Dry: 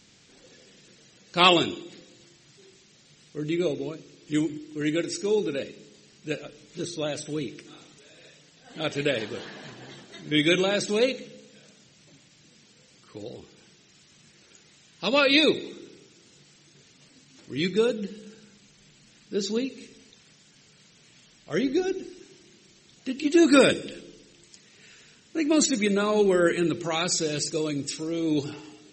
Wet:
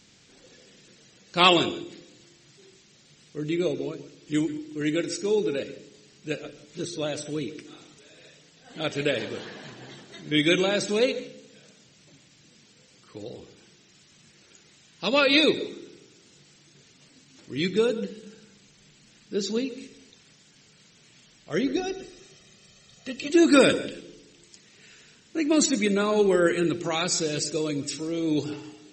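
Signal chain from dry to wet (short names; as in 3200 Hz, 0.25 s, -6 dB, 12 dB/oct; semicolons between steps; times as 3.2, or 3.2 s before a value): 21.76–23.3 comb 1.6 ms, depth 81%; on a send: reverb RT60 0.35 s, pre-delay 0.134 s, DRR 16.5 dB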